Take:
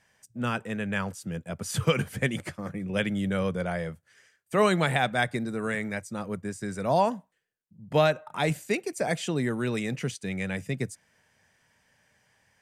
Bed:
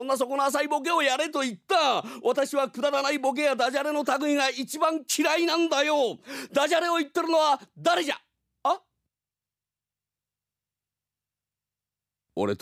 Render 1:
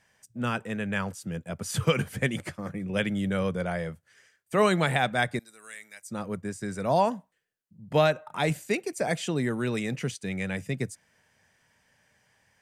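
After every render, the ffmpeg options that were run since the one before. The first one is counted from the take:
-filter_complex "[0:a]asettb=1/sr,asplit=3[s0][s1][s2];[s0]atrim=end=5.394[s3];[s1]atrim=start=5.39:end=6.08,asetpts=PTS-STARTPTS,afade=t=in:d=0.004:c=qsin,afade=t=out:st=0.686:d=0.004:c=qsin,aderivative[s4];[s2]atrim=start=6.076[s5];[s3][s4]acrossfade=d=0.004:c1=hsin:c2=qsin[s6];[s6][s5]acrossfade=d=0.004:c1=qsin:c2=hsin"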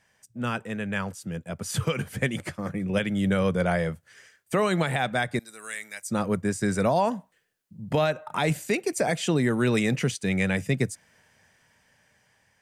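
-af "dynaudnorm=f=830:g=7:m=3.76,alimiter=limit=0.211:level=0:latency=1:release=327"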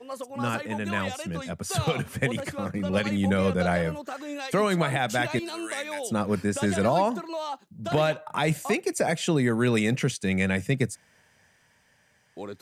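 -filter_complex "[1:a]volume=0.282[s0];[0:a][s0]amix=inputs=2:normalize=0"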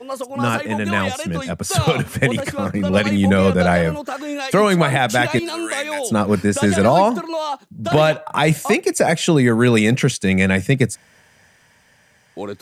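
-af "volume=2.82"

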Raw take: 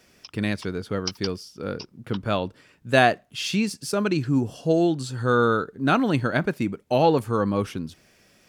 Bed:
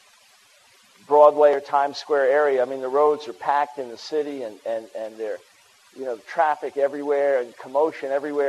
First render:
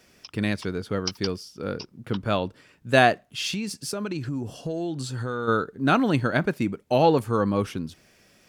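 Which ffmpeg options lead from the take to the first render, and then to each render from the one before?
-filter_complex "[0:a]asplit=3[s0][s1][s2];[s0]afade=t=out:st=3.51:d=0.02[s3];[s1]acompressor=threshold=0.0501:ratio=6:attack=3.2:release=140:knee=1:detection=peak,afade=t=in:st=3.51:d=0.02,afade=t=out:st=5.47:d=0.02[s4];[s2]afade=t=in:st=5.47:d=0.02[s5];[s3][s4][s5]amix=inputs=3:normalize=0"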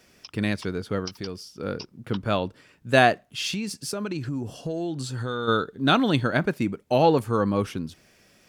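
-filter_complex "[0:a]asettb=1/sr,asplit=3[s0][s1][s2];[s0]atrim=end=1.054[s3];[s1]atrim=start=1.05:end=1.56,asetpts=PTS-STARTPTS,afade=t=in:d=0.004:c=qsin,afade=t=out:st=0.506:d=0.004:c=qsin,acompressor=threshold=0.0224:ratio=2:attack=3.2:release=140:knee=1:detection=peak[s4];[s2]atrim=start=1.556[s5];[s3][s4]acrossfade=d=0.004:c1=hsin:c2=qsin[s6];[s6][s5]acrossfade=d=0.004:c1=qsin:c2=hsin,asettb=1/sr,asplit=3[s7][s8][s9];[s7]atrim=end=5.244[s10];[s8]atrim=start=5.24:end=6.24,asetpts=PTS-STARTPTS,afade=t=in:d=0.004:c=qsin,afade=t=out:st=0.996:d=0.004:c=qsin,equalizer=f=3500:t=o:w=0.26:g=13[s11];[s9]atrim=start=6.236[s12];[s10][s11]acrossfade=d=0.004:c1=hsin:c2=qsin[s13];[s13][s12]acrossfade=d=0.004:c1=qsin:c2=hsin"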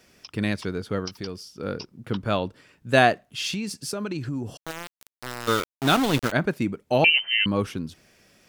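-filter_complex "[0:a]asettb=1/sr,asplit=3[s0][s1][s2];[s0]atrim=end=4.574[s3];[s1]atrim=start=4.57:end=6.32,asetpts=PTS-STARTPTS,afade=t=in:d=0.004:c=qsin,afade=t=out:st=1.746:d=0.004:c=qsin,aeval=exprs='val(0)*gte(abs(val(0)),0.0708)':c=same[s4];[s2]atrim=start=6.316[s5];[s3][s4]acrossfade=d=0.004:c1=hsin:c2=qsin[s6];[s6][s5]acrossfade=d=0.004:c1=qsin:c2=hsin,asettb=1/sr,asplit=3[s7][s8][s9];[s7]atrim=end=7.044[s10];[s8]atrim=start=7.04:end=7.46,asetpts=PTS-STARTPTS,afade=t=in:d=0.004:c=qsin,afade=t=out:st=0.416:d=0.004:c=qsin,lowpass=f=2700:t=q:w=0.5098,lowpass=f=2700:t=q:w=0.6013,lowpass=f=2700:t=q:w=0.9,lowpass=f=2700:t=q:w=2.563,afreqshift=-3200[s11];[s9]atrim=start=7.456[s12];[s10][s11]acrossfade=d=0.004:c1=hsin:c2=qsin[s13];[s13][s12]acrossfade=d=0.004:c1=qsin:c2=hsin"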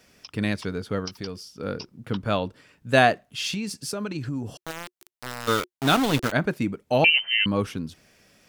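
-af "bandreject=f=360:w=12"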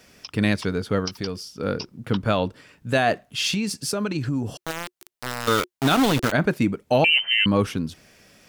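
-af "alimiter=limit=0.188:level=0:latency=1:release=39,acontrast=22"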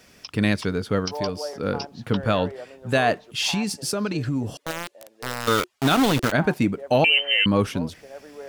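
-filter_complex "[1:a]volume=0.141[s0];[0:a][s0]amix=inputs=2:normalize=0"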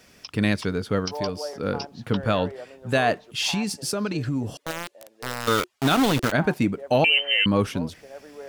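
-af "volume=0.891"

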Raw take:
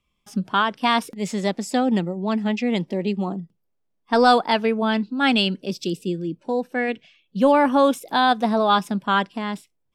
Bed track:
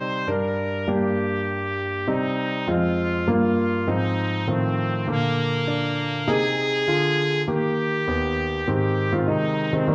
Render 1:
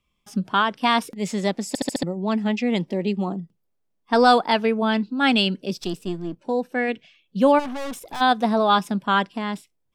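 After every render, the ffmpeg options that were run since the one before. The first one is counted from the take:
-filter_complex "[0:a]asettb=1/sr,asplit=3[s0][s1][s2];[s0]atrim=end=5.774[s3];[s1]atrim=start=5.77:end=6.38,asetpts=PTS-STARTPTS,afade=t=in:d=0.004:c=qsin,afade=t=out:st=0.606:d=0.004:c=qsin,aeval=exprs='if(lt(val(0),0),0.447*val(0),val(0))':c=same[s4];[s2]atrim=start=6.376[s5];[s3][s4]acrossfade=d=0.004:c1=hsin:c2=qsin[s6];[s6][s5]acrossfade=d=0.004:c1=qsin:c2=hsin,asplit=3[s7][s8][s9];[s7]afade=t=out:st=7.58:d=0.02[s10];[s8]aeval=exprs='(tanh(28.2*val(0)+0.4)-tanh(0.4))/28.2':c=same,afade=t=in:st=7.58:d=0.02,afade=t=out:st=8.2:d=0.02[s11];[s9]afade=t=in:st=8.2:d=0.02[s12];[s10][s11][s12]amix=inputs=3:normalize=0,asplit=6[s13][s14][s15][s16][s17][s18];[s13]atrim=end=1.752[s19];[s14]atrim=start=1.678:end=1.752[s20];[s15]atrim=start=1.678:end=1.752[s21];[s16]atrim=start=1.678:end=1.752[s22];[s17]atrim=start=1.678:end=1.752[s23];[s18]atrim=start=2.028[s24];[s19][s20]acrossfade=d=0.004:c1=hsin:c2=hsin[s25];[s25][s21]acrossfade=d=0.004:c1=hsin:c2=hsin[s26];[s26][s22]acrossfade=d=0.004:c1=hsin:c2=hsin[s27];[s27][s23]acrossfade=d=0.004:c1=hsin:c2=hsin[s28];[s28][s24]acrossfade=d=0.004:c1=hsin:c2=hsin"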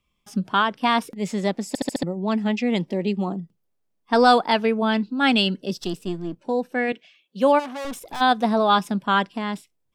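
-filter_complex "[0:a]asettb=1/sr,asplit=3[s0][s1][s2];[s0]atrim=end=0.674[s3];[s1]atrim=start=0.67:end=2.28,asetpts=PTS-STARTPTS,afade=t=in:d=0.004:c=qsin,afade=t=out:st=1.606:d=0.004:c=qsin,equalizer=f=6900:t=o:w=2.7:g=-3.5[s4];[s2]atrim=start=2.276[s5];[s3][s4]acrossfade=d=0.004:c1=hsin:c2=qsin[s6];[s6][s5]acrossfade=d=0.004:c1=qsin:c2=hsin,asettb=1/sr,asplit=3[s7][s8][s9];[s7]atrim=end=5.424[s10];[s8]atrim=start=5.42:end=5.86,asetpts=PTS-STARTPTS,afade=t=in:d=0.004:c=qsin,afade=t=out:st=0.436:d=0.004:c=qsin,asuperstop=centerf=2400:order=8:qfactor=7.4[s11];[s9]atrim=start=5.856[s12];[s10][s11]acrossfade=d=0.004:c1=hsin:c2=qsin[s13];[s13][s12]acrossfade=d=0.004:c1=qsin:c2=hsin,asettb=1/sr,asplit=3[s14][s15][s16];[s14]atrim=end=6.924[s17];[s15]atrim=start=6.92:end=7.85,asetpts=PTS-STARTPTS,afade=t=in:d=0.004:c=qsin,afade=t=out:st=0.926:d=0.004:c=qsin,highpass=300[s18];[s16]atrim=start=7.846[s19];[s17][s18]acrossfade=d=0.004:c1=hsin:c2=qsin[s20];[s20][s19]acrossfade=d=0.004:c1=qsin:c2=hsin"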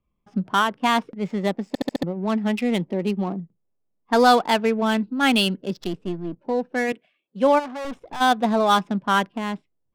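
-af "adynamicsmooth=sensitivity=5.5:basefreq=1200"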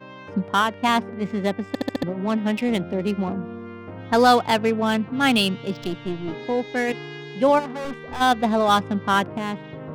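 -filter_complex "[1:a]volume=0.188[s0];[0:a][s0]amix=inputs=2:normalize=0"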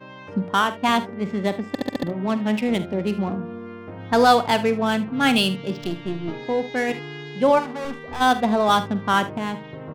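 -af "aecho=1:1:47|75:0.211|0.15"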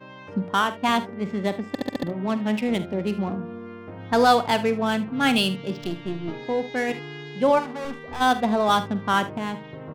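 -af "volume=0.794"

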